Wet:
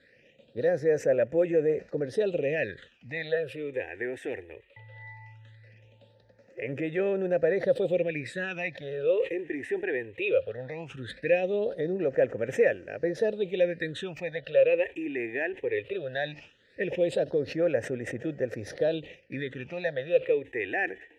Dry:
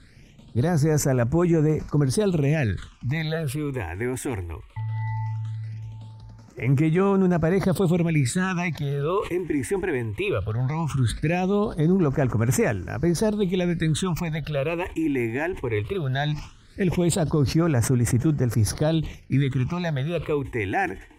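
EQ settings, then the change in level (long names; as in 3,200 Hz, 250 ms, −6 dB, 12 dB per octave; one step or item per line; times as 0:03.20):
formant filter e
parametric band 3,700 Hz +4.5 dB 0.28 octaves
+8.0 dB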